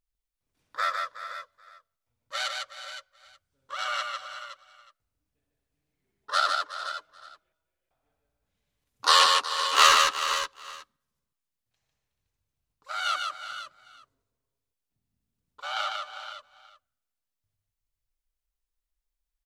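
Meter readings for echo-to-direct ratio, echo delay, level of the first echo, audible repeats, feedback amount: −2.5 dB, 119 ms, −16.0 dB, 7, repeats not evenly spaced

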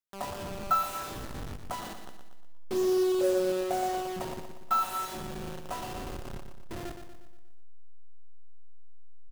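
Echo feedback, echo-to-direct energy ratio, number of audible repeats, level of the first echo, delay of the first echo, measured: 50%, −7.0 dB, 5, −8.0 dB, 119 ms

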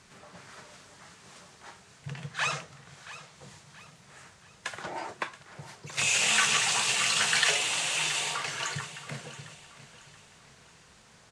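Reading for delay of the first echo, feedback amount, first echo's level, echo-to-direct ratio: 677 ms, 42%, −15.5 dB, −14.5 dB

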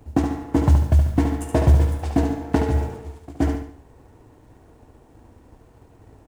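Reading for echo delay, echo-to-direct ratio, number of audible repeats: 72 ms, −5.5 dB, 4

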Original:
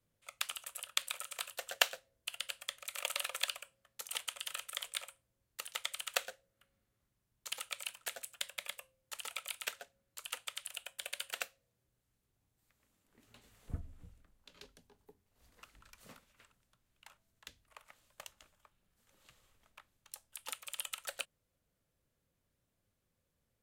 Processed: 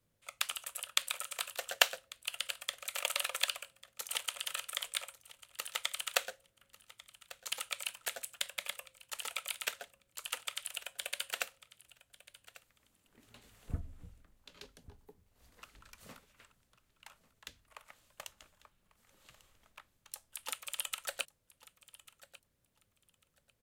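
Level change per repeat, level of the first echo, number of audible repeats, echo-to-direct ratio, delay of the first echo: −14.5 dB, −19.0 dB, 2, −19.0 dB, 1,145 ms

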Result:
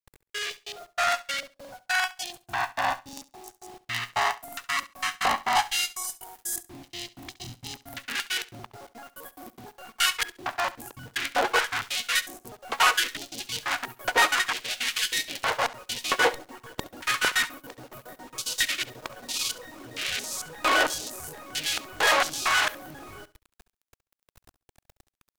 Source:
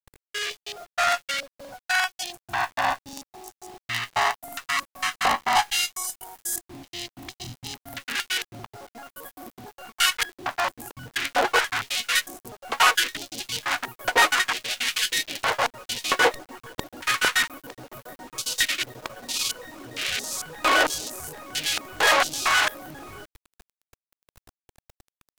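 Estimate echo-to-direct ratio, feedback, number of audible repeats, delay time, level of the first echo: −18.0 dB, 18%, 2, 68 ms, −18.0 dB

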